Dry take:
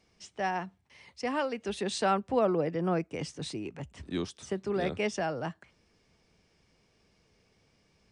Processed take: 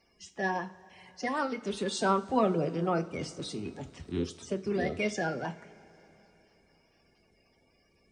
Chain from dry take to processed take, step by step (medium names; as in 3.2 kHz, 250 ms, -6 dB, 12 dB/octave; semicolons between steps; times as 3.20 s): coarse spectral quantiser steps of 30 dB; two-slope reverb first 0.3 s, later 3.7 s, from -21 dB, DRR 8 dB